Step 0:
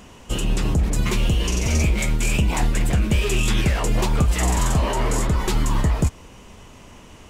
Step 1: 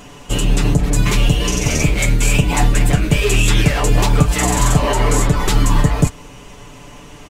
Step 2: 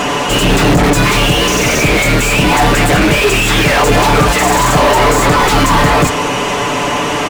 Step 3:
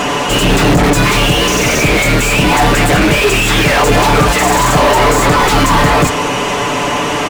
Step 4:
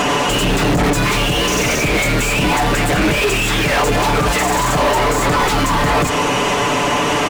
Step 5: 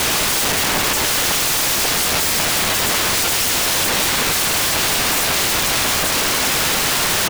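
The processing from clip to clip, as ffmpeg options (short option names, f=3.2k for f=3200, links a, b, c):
-af "aecho=1:1:6.9:0.7,volume=5dB"
-filter_complex "[0:a]asplit=2[a][b];[b]highpass=f=720:p=1,volume=40dB,asoftclip=type=tanh:threshold=-1dB[c];[a][c]amix=inputs=2:normalize=0,lowpass=f=7.2k:p=1,volume=-6dB,highshelf=f=2.1k:g=-9"
-af anull
-af "alimiter=limit=-12.5dB:level=0:latency=1:release=176,volume=3dB"
-af "afreqshift=45,aeval=exprs='(mod(5.62*val(0)+1,2)-1)/5.62':c=same,volume=2dB"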